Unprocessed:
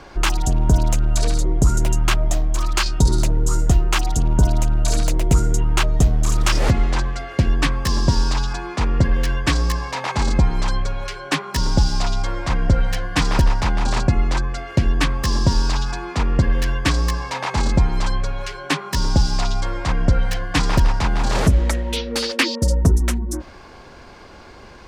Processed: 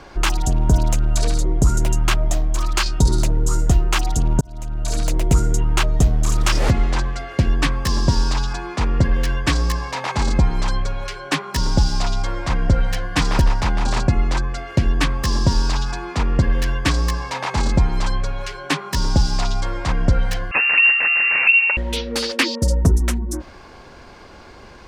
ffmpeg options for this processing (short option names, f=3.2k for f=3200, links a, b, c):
-filter_complex "[0:a]asettb=1/sr,asplit=3[a][b][c];[a]atrim=end=20.514[d];[b]atrim=start=20.51:end=21.77,asetpts=PTS-STARTPTS,afade=t=in:d=0.004:c=qsin,afade=t=out:st=1.256:d=0.004:c=qsin,lowpass=f=2.4k:t=q:w=0.5098,lowpass=f=2.4k:t=q:w=0.6013,lowpass=f=2.4k:t=q:w=0.9,lowpass=f=2.4k:t=q:w=2.563,afreqshift=-2800[e];[c]atrim=start=21.766[f];[d][e]acrossfade=d=0.004:c1=hsin:c2=qsin[g];[g][f]acrossfade=d=0.004:c1=qsin:c2=hsin,asplit=2[h][i];[h]atrim=end=4.41,asetpts=PTS-STARTPTS,afade=t=out:st=4.406:d=0.004:c=hsin[j];[i]atrim=start=4.41,asetpts=PTS-STARTPTS,afade=t=in:d=0.76[k];[j][k]concat=n=2:v=0:a=1"